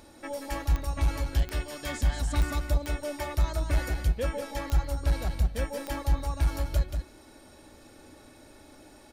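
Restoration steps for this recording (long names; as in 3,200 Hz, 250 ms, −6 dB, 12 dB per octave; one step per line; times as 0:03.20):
click removal
echo removal 182 ms −6.5 dB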